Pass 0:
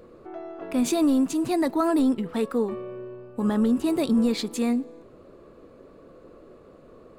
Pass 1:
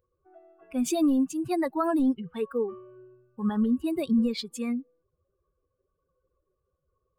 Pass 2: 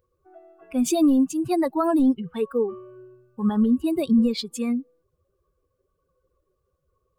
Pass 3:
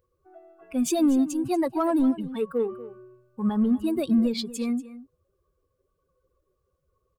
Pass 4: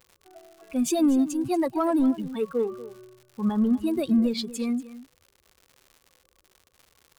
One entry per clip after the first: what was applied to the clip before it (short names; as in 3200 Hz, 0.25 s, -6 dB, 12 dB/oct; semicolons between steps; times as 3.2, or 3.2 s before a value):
per-bin expansion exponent 2
dynamic EQ 1800 Hz, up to -6 dB, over -51 dBFS, Q 1.6; gain +5 dB
in parallel at -10 dB: soft clip -27 dBFS, distortion -7 dB; on the sum: echo 0.239 s -16 dB; gain -3.5 dB
crackle 170/s -41 dBFS